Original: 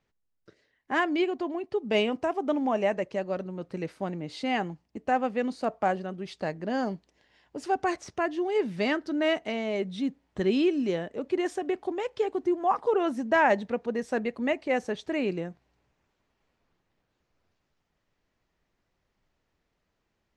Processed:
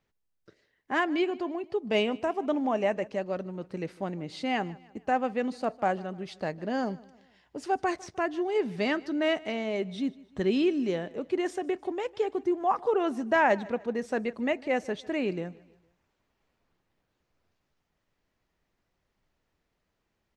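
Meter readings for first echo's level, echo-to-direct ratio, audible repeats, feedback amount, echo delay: -22.0 dB, -21.0 dB, 2, 45%, 152 ms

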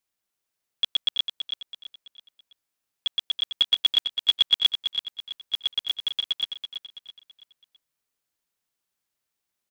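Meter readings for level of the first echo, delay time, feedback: -8.0 dB, 330 ms, 39%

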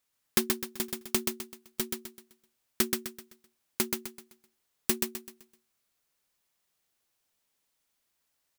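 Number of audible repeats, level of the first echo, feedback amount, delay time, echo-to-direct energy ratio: 4, -4.0 dB, 37%, 128 ms, -3.5 dB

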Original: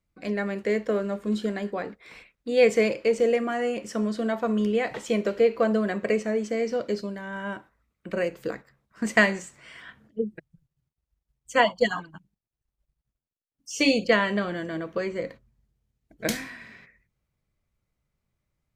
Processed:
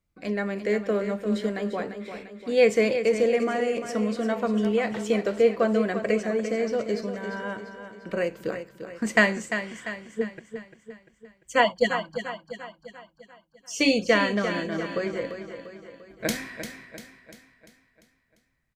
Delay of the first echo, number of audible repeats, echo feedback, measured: 346 ms, 5, 50%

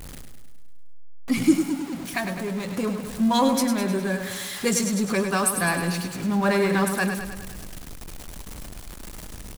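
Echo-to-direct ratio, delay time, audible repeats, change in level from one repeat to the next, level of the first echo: -5.5 dB, 103 ms, 7, -4.5 dB, -7.5 dB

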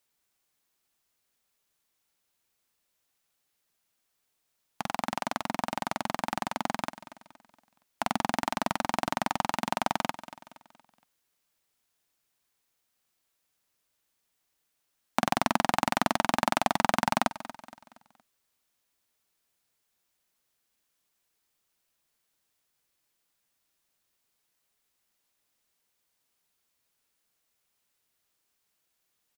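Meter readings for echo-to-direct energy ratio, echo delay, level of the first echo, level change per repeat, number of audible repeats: -14.5 dB, 234 ms, -15.5 dB, -7.5 dB, 3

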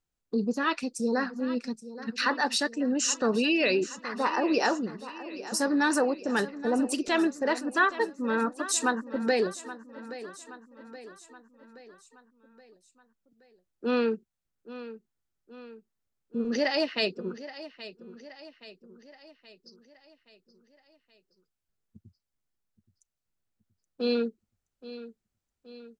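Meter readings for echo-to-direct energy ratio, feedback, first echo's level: -13.5 dB, 53%, -15.0 dB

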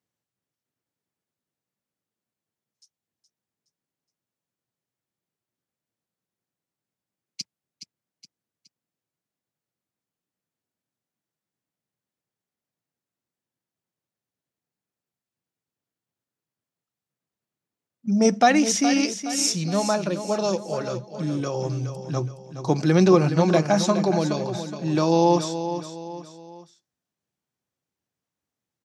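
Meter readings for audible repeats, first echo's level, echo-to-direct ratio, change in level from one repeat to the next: 3, -10.0 dB, -9.0 dB, -7.5 dB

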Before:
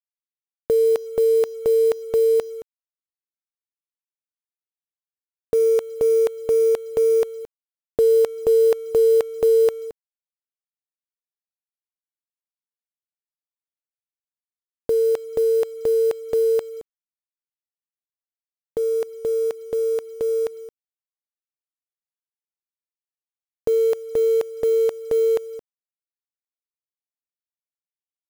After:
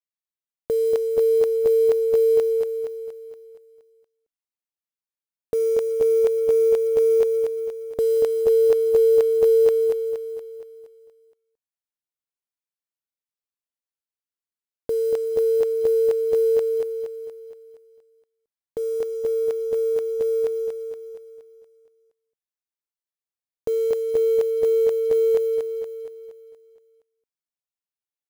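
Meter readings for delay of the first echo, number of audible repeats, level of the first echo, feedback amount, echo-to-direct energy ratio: 235 ms, 6, -5.5 dB, 52%, -4.0 dB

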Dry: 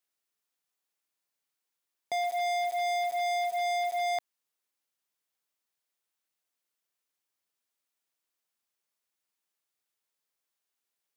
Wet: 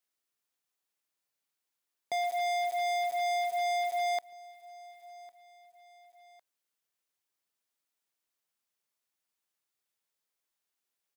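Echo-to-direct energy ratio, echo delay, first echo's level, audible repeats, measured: -20.5 dB, 1104 ms, -21.5 dB, 2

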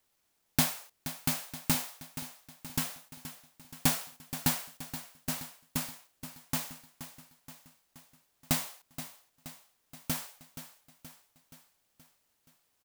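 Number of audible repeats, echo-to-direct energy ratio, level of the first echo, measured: 5, -11.0 dB, -12.5 dB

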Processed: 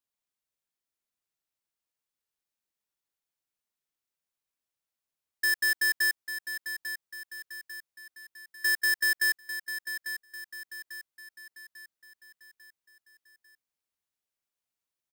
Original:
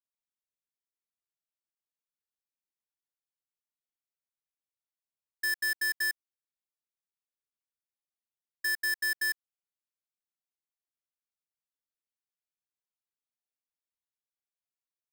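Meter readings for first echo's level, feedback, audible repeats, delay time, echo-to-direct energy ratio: -10.0 dB, 48%, 4, 846 ms, -9.0 dB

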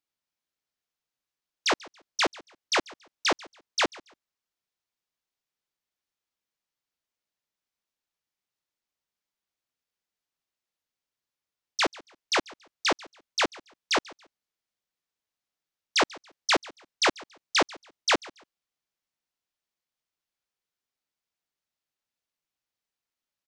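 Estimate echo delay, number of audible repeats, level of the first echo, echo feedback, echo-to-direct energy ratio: 140 ms, 2, -22.0 dB, 25%, -21.5 dB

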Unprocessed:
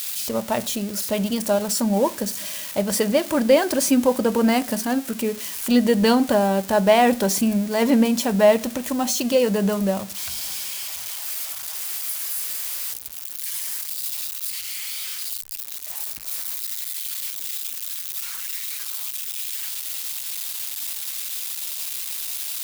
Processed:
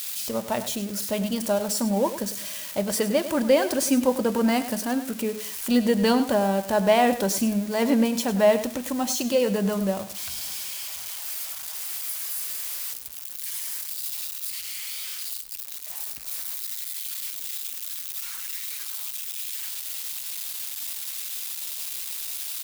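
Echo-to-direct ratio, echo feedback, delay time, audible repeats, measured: -12.5 dB, 19%, 101 ms, 2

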